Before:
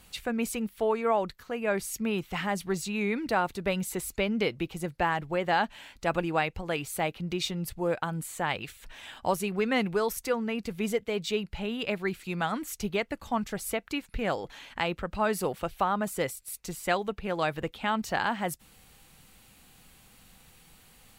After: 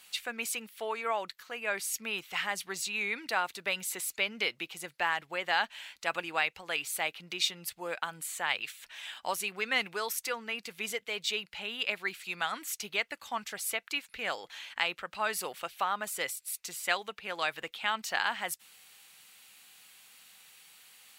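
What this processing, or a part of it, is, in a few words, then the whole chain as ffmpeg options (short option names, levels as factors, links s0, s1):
filter by subtraction: -filter_complex "[0:a]asplit=2[s0][s1];[s1]lowpass=2600,volume=-1[s2];[s0][s2]amix=inputs=2:normalize=0,volume=1.19"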